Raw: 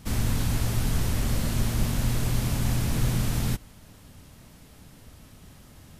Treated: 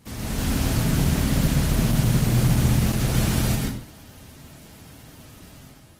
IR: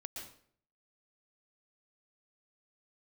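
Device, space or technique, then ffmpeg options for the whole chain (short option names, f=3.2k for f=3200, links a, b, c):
far-field microphone of a smart speaker: -filter_complex "[0:a]asettb=1/sr,asplit=3[a][b][c];[a]atrim=end=0.694[d];[b]atrim=start=0.69:end=2.73,asetpts=PTS-STARTPTS,afade=t=in:d=0.004:c=qsin,afade=t=out:st=2.036:d=0.004:c=qsin,adynamicequalizer=threshold=0.00708:dfrequency=160:dqfactor=1.9:tfrequency=160:tqfactor=1.9:attack=5:release=100:ratio=0.375:range=3.5:mode=boostabove:tftype=bell[e];[c]atrim=start=2.726[f];[d][e]acrossfade=d=0.004:c1=hsin:c2=qsin[g];[g][f]acrossfade=d=0.004:c1=qsin:c2=hsin[h];[1:a]atrim=start_sample=2205[i];[h][i]afir=irnorm=-1:irlink=0,highpass=f=120:p=1,dynaudnorm=f=100:g=7:m=7dB,volume=2.5dB" -ar 48000 -c:a libopus -b:a 16k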